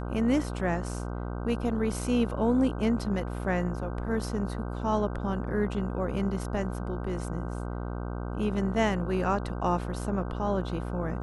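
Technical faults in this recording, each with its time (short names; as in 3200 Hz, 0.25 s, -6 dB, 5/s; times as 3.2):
buzz 60 Hz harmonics 26 -34 dBFS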